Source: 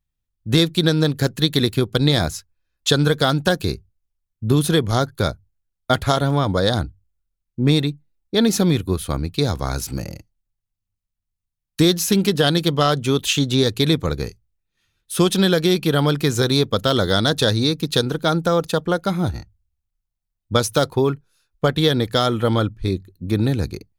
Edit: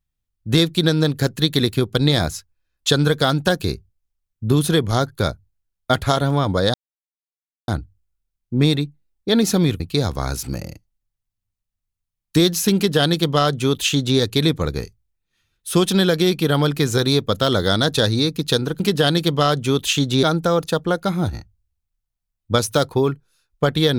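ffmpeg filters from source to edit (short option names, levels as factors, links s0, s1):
-filter_complex "[0:a]asplit=5[s0][s1][s2][s3][s4];[s0]atrim=end=6.74,asetpts=PTS-STARTPTS,afade=t=out:st=6.736:d=0.004:c=hsin,apad=pad_dur=0.94[s5];[s1]atrim=start=6.74:end=8.862,asetpts=PTS-STARTPTS,afade=t=in:d=0.004:c=hsin[s6];[s2]atrim=start=9.238:end=18.242[s7];[s3]atrim=start=12.198:end=13.632[s8];[s4]atrim=start=18.238[s9];[s5][s6]concat=n=2:v=0:a=1[s10];[s10][s7]acrossfade=d=0.004:c1=hsin:c2=hsin[s11];[s11][s8]acrossfade=d=0.004:c1=hsin:c2=hsin[s12];[s12][s9]acrossfade=d=0.004:c1=hsin:c2=hsin"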